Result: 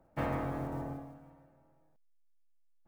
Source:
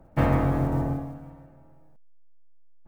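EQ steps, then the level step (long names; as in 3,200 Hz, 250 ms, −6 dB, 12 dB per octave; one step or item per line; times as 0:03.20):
low-shelf EQ 210 Hz −9 dB
−8.5 dB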